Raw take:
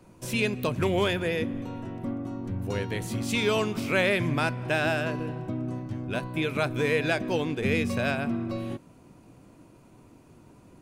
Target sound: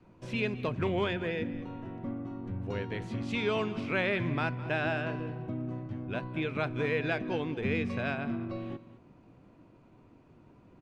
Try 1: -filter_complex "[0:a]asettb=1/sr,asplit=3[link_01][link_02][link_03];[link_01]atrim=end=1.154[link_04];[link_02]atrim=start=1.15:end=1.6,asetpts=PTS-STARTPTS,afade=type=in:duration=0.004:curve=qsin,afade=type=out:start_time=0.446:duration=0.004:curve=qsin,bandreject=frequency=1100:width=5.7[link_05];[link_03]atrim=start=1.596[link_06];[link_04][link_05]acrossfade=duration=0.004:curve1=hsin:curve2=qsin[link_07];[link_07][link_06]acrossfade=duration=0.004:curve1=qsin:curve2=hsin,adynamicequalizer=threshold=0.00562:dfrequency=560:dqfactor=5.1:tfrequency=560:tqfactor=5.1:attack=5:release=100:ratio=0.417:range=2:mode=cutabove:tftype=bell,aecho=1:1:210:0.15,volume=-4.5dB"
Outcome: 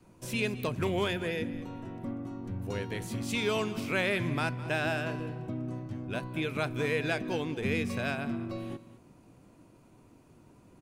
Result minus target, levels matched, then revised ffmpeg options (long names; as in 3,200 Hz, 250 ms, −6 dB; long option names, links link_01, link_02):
4,000 Hz band +3.0 dB
-filter_complex "[0:a]asettb=1/sr,asplit=3[link_01][link_02][link_03];[link_01]atrim=end=1.154[link_04];[link_02]atrim=start=1.15:end=1.6,asetpts=PTS-STARTPTS,afade=type=in:duration=0.004:curve=qsin,afade=type=out:start_time=0.446:duration=0.004:curve=qsin,bandreject=frequency=1100:width=5.7[link_05];[link_03]atrim=start=1.596[link_06];[link_04][link_05]acrossfade=duration=0.004:curve1=hsin:curve2=qsin[link_07];[link_07][link_06]acrossfade=duration=0.004:curve1=qsin:curve2=hsin,adynamicequalizer=threshold=0.00562:dfrequency=560:dqfactor=5.1:tfrequency=560:tqfactor=5.1:attack=5:release=100:ratio=0.417:range=2:mode=cutabove:tftype=bell,lowpass=3200,aecho=1:1:210:0.15,volume=-4.5dB"